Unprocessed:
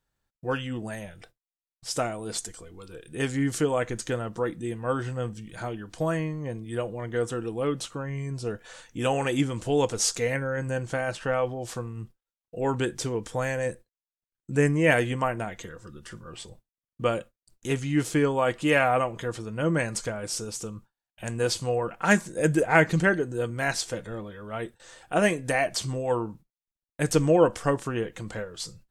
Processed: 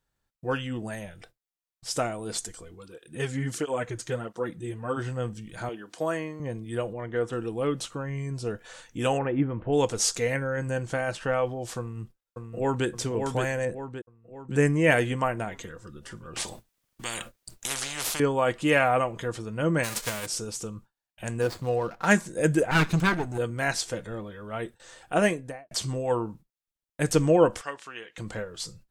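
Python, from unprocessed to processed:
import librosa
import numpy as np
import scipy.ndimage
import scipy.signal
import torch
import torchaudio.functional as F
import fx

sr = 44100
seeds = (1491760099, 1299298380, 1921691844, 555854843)

y = fx.flanger_cancel(x, sr, hz=1.5, depth_ms=5.2, at=(2.74, 4.96), fade=0.02)
y = fx.highpass(y, sr, hz=280.0, slope=12, at=(5.69, 6.4))
y = fx.bass_treble(y, sr, bass_db=-3, treble_db=-12, at=(6.93, 7.33))
y = fx.gaussian_blur(y, sr, sigma=4.5, at=(9.17, 9.72), fade=0.02)
y = fx.echo_throw(y, sr, start_s=11.79, length_s=1.08, ms=570, feedback_pct=50, wet_db=-4.5)
y = fx.high_shelf(y, sr, hz=2700.0, db=-11.0, at=(13.65, 14.51))
y = fx.spectral_comp(y, sr, ratio=10.0, at=(16.36, 18.2))
y = fx.envelope_flatten(y, sr, power=0.3, at=(19.83, 20.25), fade=0.02)
y = fx.median_filter(y, sr, points=15, at=(21.41, 22.06))
y = fx.lower_of_two(y, sr, delay_ms=0.78, at=(22.71, 23.38))
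y = fx.studio_fade_out(y, sr, start_s=25.2, length_s=0.51)
y = fx.bandpass_q(y, sr, hz=2900.0, q=0.89, at=(27.61, 28.18))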